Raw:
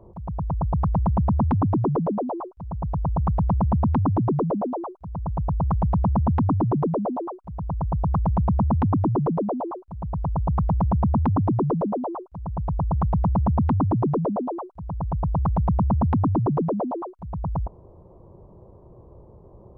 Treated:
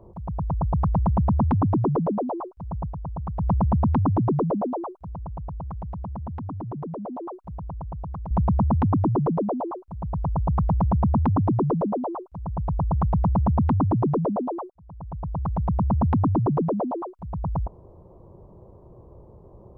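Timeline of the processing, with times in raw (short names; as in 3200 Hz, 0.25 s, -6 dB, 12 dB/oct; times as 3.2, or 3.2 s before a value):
2.79–3.5 dip -8.5 dB, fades 0.15 s
5.01–8.31 compressor, threshold -32 dBFS
14.7–16.07 fade in, from -21 dB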